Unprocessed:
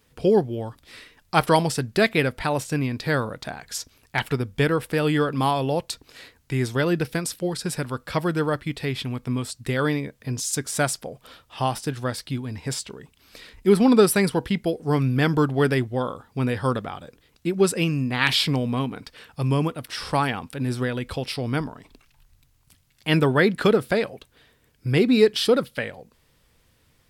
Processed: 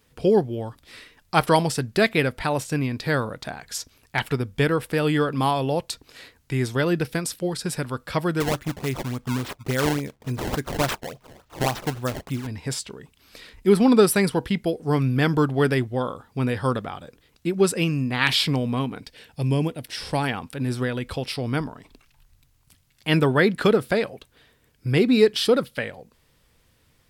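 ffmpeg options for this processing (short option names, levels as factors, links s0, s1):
-filter_complex "[0:a]asettb=1/sr,asplit=3[s0][s1][s2];[s0]atrim=end=8.404[s3];[s1]atrim=start=8.4:end=12.47,asetpts=PTS-STARTPTS,afade=t=in:d=0.004:c=qsin,afade=t=out:st=4.066:d=0.004:c=qsin,acrusher=samples=21:mix=1:aa=0.000001:lfo=1:lforange=33.6:lforate=3.5[s4];[s2]atrim=start=12.466[s5];[s3][s4]acrossfade=d=0.004:c1=hsin:c2=qsin[s6];[s6][s5]acrossfade=d=0.004:c1=qsin:c2=hsin,asettb=1/sr,asplit=3[s7][s8][s9];[s7]atrim=end=18.994[s10];[s8]atrim=start=18.99:end=20.24,asetpts=PTS-STARTPTS,afade=t=in:d=0.004:c=qsin,afade=t=out:st=1.246:d=0.004:c=qsin,equalizer=f=1200:t=o:w=0.56:g=-12[s11];[s9]atrim=start=20.236[s12];[s10][s11]acrossfade=d=0.004:c1=hsin:c2=qsin[s13];[s13][s12]acrossfade=d=0.004:c1=qsin:c2=hsin"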